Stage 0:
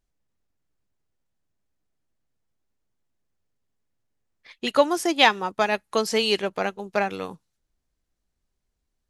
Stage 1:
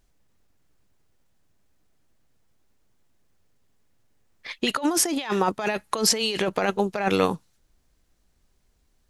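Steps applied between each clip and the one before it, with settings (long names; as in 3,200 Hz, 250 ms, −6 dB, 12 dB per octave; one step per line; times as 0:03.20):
compressor whose output falls as the input rises −30 dBFS, ratio −1
level +5.5 dB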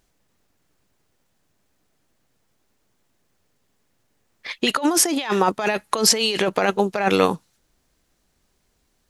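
low-shelf EQ 92 Hz −10.5 dB
level +4.5 dB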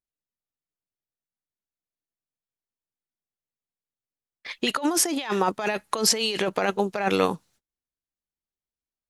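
noise gate −52 dBFS, range −27 dB
level −4.5 dB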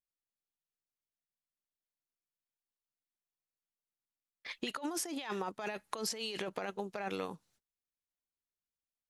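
downward compressor 4 to 1, threshold −28 dBFS, peak gain reduction 11 dB
level −7.5 dB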